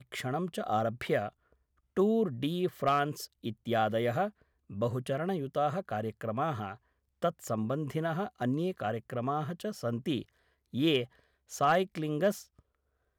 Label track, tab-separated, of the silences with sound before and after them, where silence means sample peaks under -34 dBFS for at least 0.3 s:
1.290000	1.970000	silence
4.280000	4.760000	silence
6.720000	7.230000	silence
10.220000	10.740000	silence
11.040000	11.530000	silence